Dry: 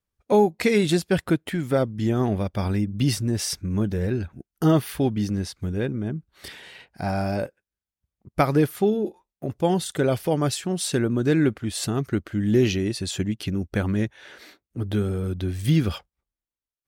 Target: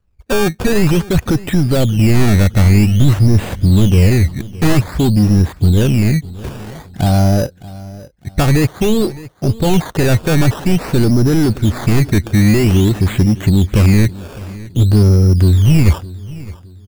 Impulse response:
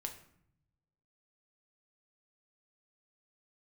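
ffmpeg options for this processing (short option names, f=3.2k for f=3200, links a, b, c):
-filter_complex "[0:a]apsyclip=18.5dB,acontrast=63,aemphasis=mode=reproduction:type=bsi,acrusher=samples=15:mix=1:aa=0.000001:lfo=1:lforange=15:lforate=0.51,asplit=2[a][b];[b]aecho=0:1:613|1226|1839:0.112|0.0381|0.013[c];[a][c]amix=inputs=2:normalize=0,volume=-13dB"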